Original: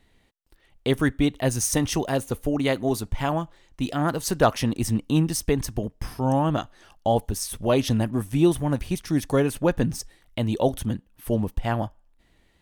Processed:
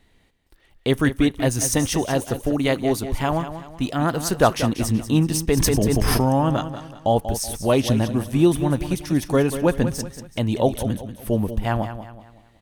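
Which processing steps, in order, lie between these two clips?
on a send: repeating echo 188 ms, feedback 39%, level −11 dB
0:05.57–0:06.29: on the sum: envelope flattener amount 100%
level +2.5 dB

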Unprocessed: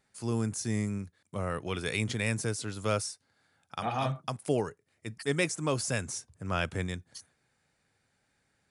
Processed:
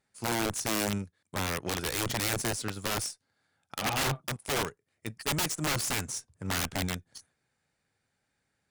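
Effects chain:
wrap-around overflow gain 26 dB
harmonic generator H 3 −26 dB, 4 −31 dB, 7 −24 dB, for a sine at −26 dBFS
level +3 dB

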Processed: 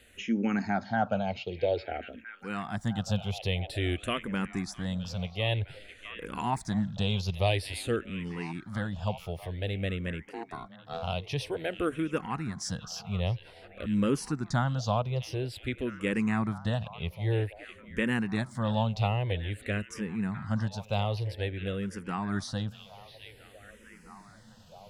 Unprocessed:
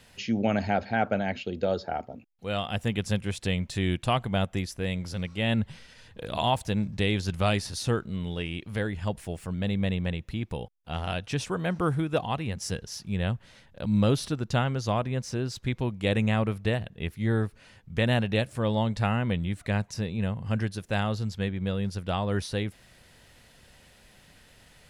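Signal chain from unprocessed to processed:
0:10.25–0:11.03: ring modulation 580 Hz
echo through a band-pass that steps 657 ms, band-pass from 2,700 Hz, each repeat −0.7 octaves, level −9 dB
frequency shifter mixed with the dry sound −0.51 Hz

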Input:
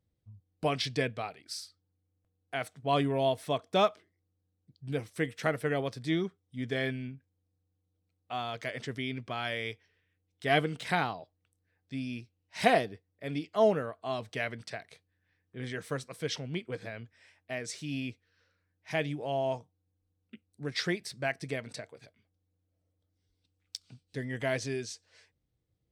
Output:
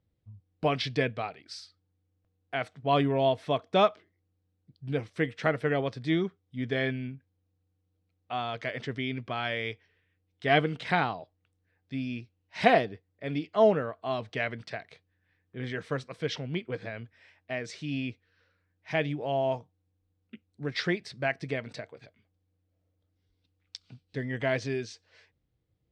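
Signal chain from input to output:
low-pass filter 4,000 Hz 12 dB per octave
level +3 dB

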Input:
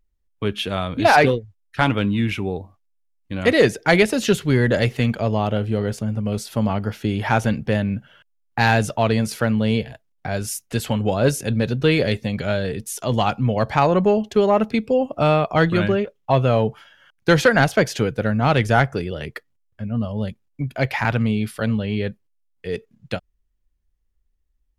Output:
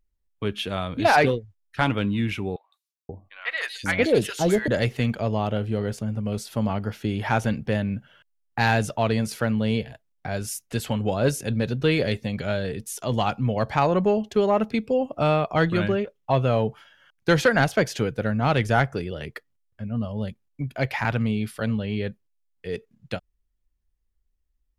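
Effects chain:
0:02.56–0:04.68: three-band delay without the direct sound mids, highs, lows 160/530 ms, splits 960/3,500 Hz
level −4 dB

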